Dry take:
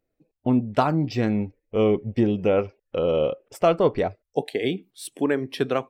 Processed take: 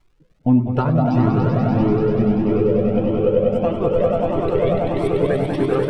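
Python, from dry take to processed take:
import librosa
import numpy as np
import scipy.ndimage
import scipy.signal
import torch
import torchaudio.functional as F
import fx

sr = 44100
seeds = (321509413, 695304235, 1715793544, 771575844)

p1 = fx.peak_eq(x, sr, hz=72.0, db=-9.0, octaves=1.3)
p2 = fx.echo_swell(p1, sr, ms=97, loudest=5, wet_db=-5)
p3 = fx.rider(p2, sr, range_db=10, speed_s=0.5)
p4 = fx.dmg_crackle(p3, sr, seeds[0], per_s=360.0, level_db=-47.0)
p5 = fx.riaa(p4, sr, side='playback')
p6 = p5 + fx.echo_stepped(p5, sr, ms=204, hz=590.0, octaves=1.4, feedback_pct=70, wet_db=-4.0, dry=0)
y = fx.comb_cascade(p6, sr, direction='rising', hz=1.6)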